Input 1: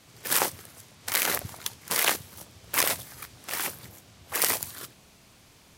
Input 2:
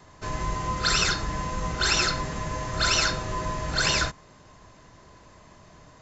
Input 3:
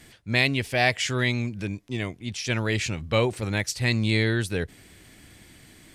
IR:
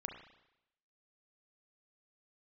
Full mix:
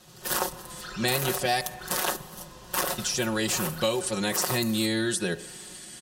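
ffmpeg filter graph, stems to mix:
-filter_complex "[0:a]volume=-1dB,asplit=2[a][b];[b]volume=-10.5dB[c];[1:a]bass=f=250:g=-6,treble=f=4k:g=-12,volume=-15.5dB[d];[2:a]lowpass=f=10k:w=0.5412,lowpass=f=10k:w=1.3066,crystalizer=i=2.5:c=0,highpass=f=210:p=1,adelay=700,volume=-0.5dB,asplit=3[e][f][g];[e]atrim=end=1.61,asetpts=PTS-STARTPTS,afade=t=out:st=1.606:d=0.004:c=hsin[h];[f]atrim=start=1.61:end=2.98,asetpts=PTS-STARTPTS,volume=0[i];[g]atrim=start=2.98,asetpts=PTS-STARTPTS,afade=t=in:d=0.004:c=hsin[j];[h][i][j]concat=n=3:v=0:a=1,asplit=2[k][l];[l]volume=-6dB[m];[3:a]atrim=start_sample=2205[n];[c][m]amix=inputs=2:normalize=0[o];[o][n]afir=irnorm=-1:irlink=0[p];[a][d][k][p]amix=inputs=4:normalize=0,equalizer=f=2.2k:t=o:w=0.24:g=-11.5,aecho=1:1:5.5:0.86,acrossover=split=1500|3000|7500[q][r][s][t];[q]acompressor=threshold=-25dB:ratio=4[u];[r]acompressor=threshold=-42dB:ratio=4[v];[s]acompressor=threshold=-35dB:ratio=4[w];[t]acompressor=threshold=-31dB:ratio=4[x];[u][v][w][x]amix=inputs=4:normalize=0"

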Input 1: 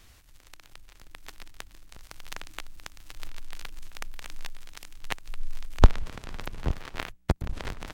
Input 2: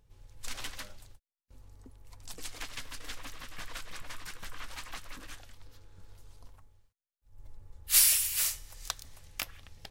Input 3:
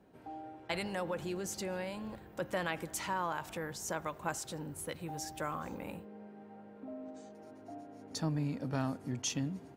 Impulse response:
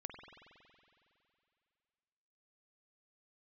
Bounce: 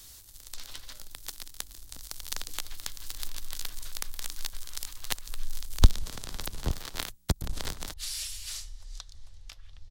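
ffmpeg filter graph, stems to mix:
-filter_complex "[0:a]acrossover=split=310|3000[a][b][c];[b]acompressor=threshold=-31dB:ratio=6[d];[a][d][c]amix=inputs=3:normalize=0,volume=-2dB[e];[1:a]lowpass=3.9k,asubboost=boost=6.5:cutoff=76,alimiter=limit=-24dB:level=0:latency=1:release=195,adelay=100,volume=-8dB[f];[e][f]amix=inputs=2:normalize=0,aexciter=amount=2.1:drive=9.4:freq=3.5k"

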